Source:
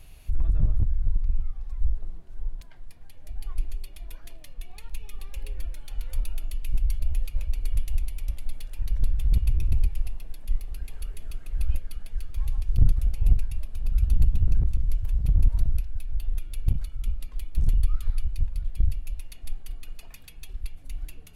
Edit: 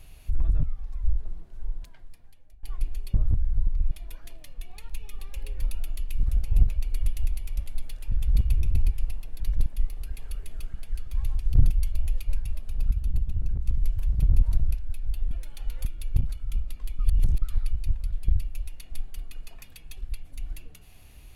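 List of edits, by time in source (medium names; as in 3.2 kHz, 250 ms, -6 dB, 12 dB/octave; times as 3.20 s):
0.63–1.40 s: move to 3.91 s
2.58–3.40 s: fade out, to -24 dB
5.62–6.16 s: move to 16.37 s
6.77–7.40 s: swap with 12.93–13.39 s
8.83–9.09 s: move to 10.37 s
11.45–11.97 s: delete
13.97–14.72 s: gain -6 dB
17.51–17.94 s: reverse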